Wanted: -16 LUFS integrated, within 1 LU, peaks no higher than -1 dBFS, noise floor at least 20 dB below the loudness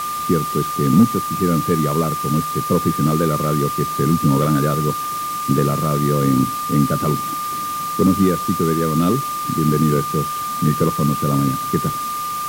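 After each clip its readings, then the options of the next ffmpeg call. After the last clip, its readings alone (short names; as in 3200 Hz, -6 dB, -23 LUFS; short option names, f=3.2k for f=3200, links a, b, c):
steady tone 1200 Hz; tone level -22 dBFS; noise floor -24 dBFS; noise floor target -39 dBFS; loudness -18.5 LUFS; peak -1.5 dBFS; loudness target -16.0 LUFS
-> -af "bandreject=f=1.2k:w=30"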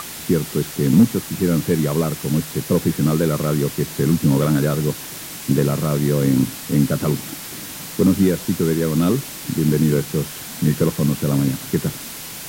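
steady tone none; noise floor -33 dBFS; noise floor target -40 dBFS
-> -af "afftdn=nr=7:nf=-33"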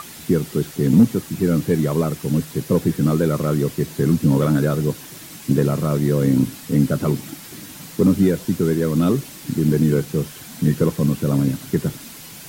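noise floor -39 dBFS; noise floor target -40 dBFS
-> -af "afftdn=nr=6:nf=-39"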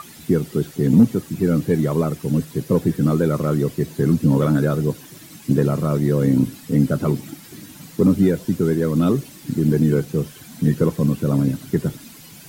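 noise floor -43 dBFS; loudness -20.0 LUFS; peak -3.0 dBFS; loudness target -16.0 LUFS
-> -af "volume=4dB,alimiter=limit=-1dB:level=0:latency=1"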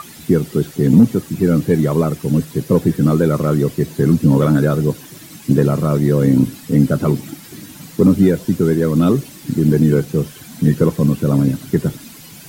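loudness -16.0 LUFS; peak -1.0 dBFS; noise floor -39 dBFS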